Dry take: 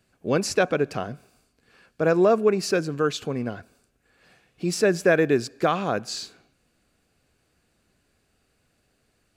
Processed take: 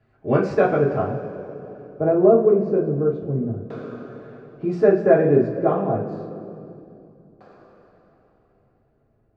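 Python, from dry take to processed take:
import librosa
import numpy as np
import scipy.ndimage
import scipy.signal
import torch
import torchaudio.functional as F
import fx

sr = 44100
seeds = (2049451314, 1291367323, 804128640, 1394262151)

y = fx.rev_double_slope(x, sr, seeds[0], early_s=0.29, late_s=4.1, knee_db=-18, drr_db=-6.0)
y = fx.filter_lfo_lowpass(y, sr, shape='saw_down', hz=0.27, low_hz=290.0, high_hz=1800.0, q=0.73)
y = y * librosa.db_to_amplitude(-1.0)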